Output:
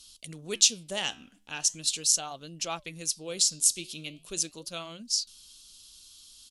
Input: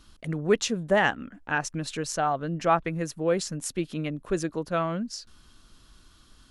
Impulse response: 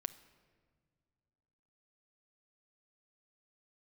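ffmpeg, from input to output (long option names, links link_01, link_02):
-af "flanger=delay=2.7:depth=9.9:regen=-84:speed=0.4:shape=sinusoidal,aexciter=amount=14.2:drive=5:freq=2700,aresample=32000,aresample=44100,volume=-9.5dB"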